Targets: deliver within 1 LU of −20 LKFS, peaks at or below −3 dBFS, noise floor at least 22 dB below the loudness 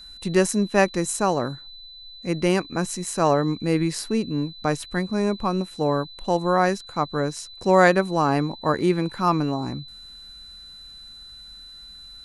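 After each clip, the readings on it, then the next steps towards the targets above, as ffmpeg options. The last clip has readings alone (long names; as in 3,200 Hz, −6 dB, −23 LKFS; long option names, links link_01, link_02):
interfering tone 4,000 Hz; level of the tone −41 dBFS; integrated loudness −23.0 LKFS; sample peak −3.0 dBFS; target loudness −20.0 LKFS
→ -af "bandreject=frequency=4000:width=30"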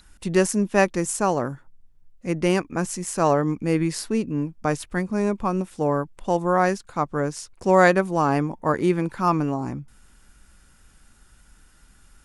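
interfering tone none found; integrated loudness −23.0 LKFS; sample peak −3.0 dBFS; target loudness −20.0 LKFS
→ -af "volume=3dB,alimiter=limit=-3dB:level=0:latency=1"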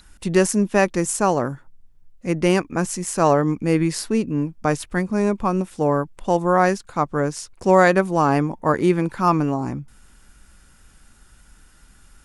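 integrated loudness −20.5 LKFS; sample peak −3.0 dBFS; background noise floor −52 dBFS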